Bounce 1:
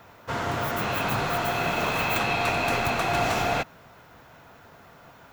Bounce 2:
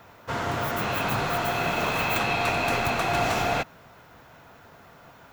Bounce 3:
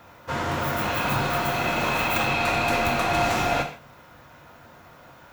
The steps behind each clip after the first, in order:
no processing that can be heard
reverb whose tail is shaped and stops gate 180 ms falling, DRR 3 dB

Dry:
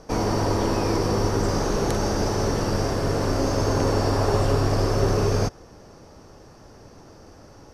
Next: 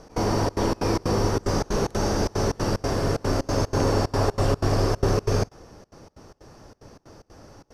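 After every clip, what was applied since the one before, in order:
gate pattern "x.xxxx.xx.x" 185 BPM −24 dB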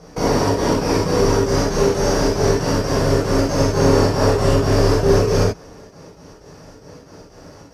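high-pass filter 45 Hz
reverb whose tail is shaped and stops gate 110 ms flat, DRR −6.5 dB

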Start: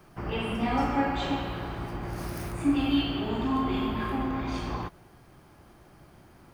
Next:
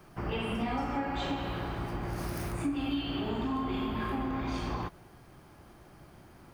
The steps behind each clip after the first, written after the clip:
downward compressor 6 to 1, threshold −29 dBFS, peak gain reduction 9.5 dB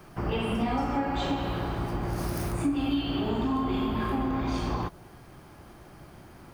dynamic equaliser 2,100 Hz, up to −4 dB, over −54 dBFS, Q 1
level +5 dB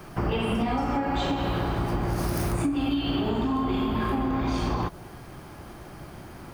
downward compressor, threshold −29 dBFS, peak gain reduction 7 dB
level +6.5 dB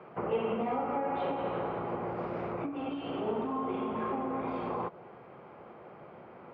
loudspeaker in its box 240–2,300 Hz, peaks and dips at 300 Hz −8 dB, 490 Hz +8 dB, 1,700 Hz −8 dB
level −4 dB

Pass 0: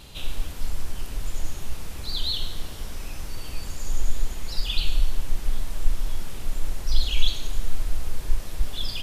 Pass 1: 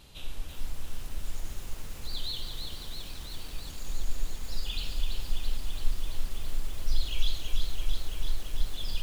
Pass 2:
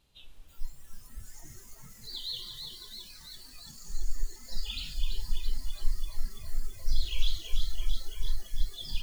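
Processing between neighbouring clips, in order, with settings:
feedback echo at a low word length 335 ms, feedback 80%, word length 7 bits, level −5 dB; level −8.5 dB
noise reduction from a noise print of the clip's start 16 dB

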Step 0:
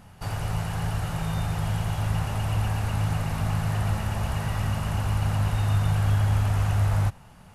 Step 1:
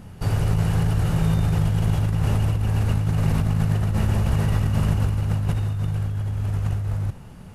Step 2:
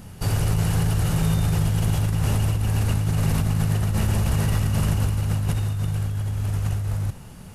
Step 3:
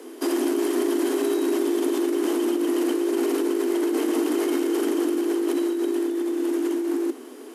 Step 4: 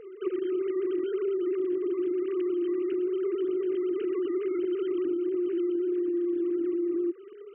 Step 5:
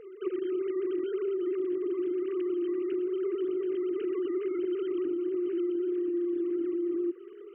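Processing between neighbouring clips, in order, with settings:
low shelf with overshoot 560 Hz +6.5 dB, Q 1.5; compressor whose output falls as the input rises −21 dBFS, ratio −1
high-shelf EQ 3,800 Hz +10 dB; soft clipping −10.5 dBFS, distortion −24 dB
brickwall limiter −16.5 dBFS, peak gain reduction 4.5 dB; frequency shifter +240 Hz
three sine waves on the formant tracks; downward compressor, threshold −26 dBFS, peak gain reduction 7.5 dB
feedback echo with a high-pass in the loop 1,036 ms, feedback 60%, high-pass 630 Hz, level −16.5 dB; level −2 dB

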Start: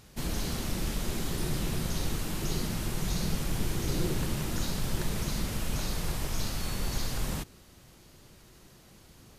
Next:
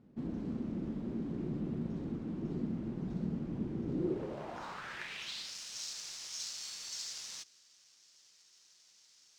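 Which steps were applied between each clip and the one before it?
sample-rate reduction 12,000 Hz, jitter 0%
band-pass filter sweep 250 Hz → 5,700 Hz, 0:03.94–0:05.57
level +3 dB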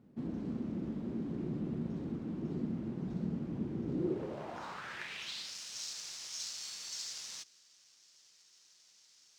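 high-pass filter 60 Hz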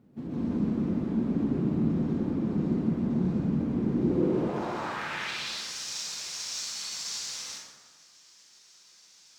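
dense smooth reverb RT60 1.5 s, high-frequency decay 0.45×, pre-delay 115 ms, DRR −7 dB
level +2 dB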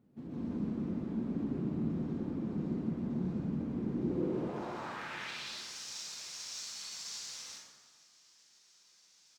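repeating echo 433 ms, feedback 50%, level −23 dB
level −8 dB

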